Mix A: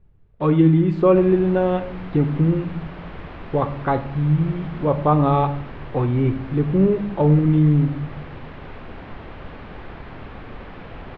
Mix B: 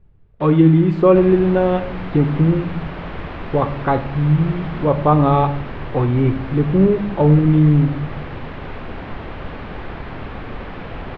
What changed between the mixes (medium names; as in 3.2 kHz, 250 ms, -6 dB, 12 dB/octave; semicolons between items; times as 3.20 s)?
speech +3.0 dB; first sound +8.5 dB; second sound +6.5 dB